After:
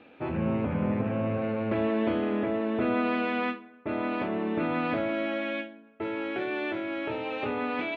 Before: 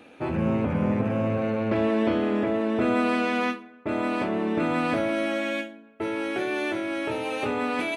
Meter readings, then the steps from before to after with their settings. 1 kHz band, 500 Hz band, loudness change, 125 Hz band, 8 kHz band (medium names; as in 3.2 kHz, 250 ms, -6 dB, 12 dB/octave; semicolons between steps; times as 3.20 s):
-3.5 dB, -3.5 dB, -3.5 dB, -3.5 dB, no reading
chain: low-pass 3.7 kHz 24 dB/octave; trim -3.5 dB